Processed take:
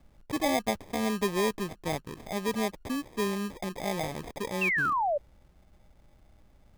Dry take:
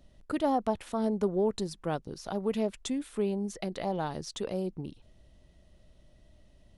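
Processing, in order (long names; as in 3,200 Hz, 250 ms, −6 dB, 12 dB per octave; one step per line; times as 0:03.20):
decimation without filtering 31×
sound drawn into the spectrogram fall, 0:04.61–0:05.18, 550–2,800 Hz −27 dBFS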